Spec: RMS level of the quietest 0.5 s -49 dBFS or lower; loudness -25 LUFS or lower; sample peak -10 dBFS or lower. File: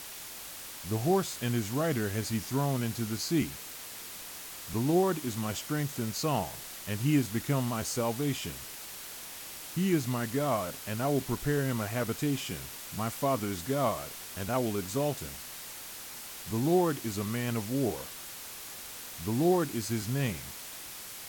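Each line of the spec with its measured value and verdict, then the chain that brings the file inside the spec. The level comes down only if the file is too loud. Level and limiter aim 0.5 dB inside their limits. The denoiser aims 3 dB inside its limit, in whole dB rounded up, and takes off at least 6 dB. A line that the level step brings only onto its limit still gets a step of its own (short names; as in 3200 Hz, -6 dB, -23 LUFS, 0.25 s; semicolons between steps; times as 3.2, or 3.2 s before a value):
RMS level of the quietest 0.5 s -44 dBFS: fail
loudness -32.0 LUFS: OK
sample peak -14.5 dBFS: OK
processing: denoiser 8 dB, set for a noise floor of -44 dBFS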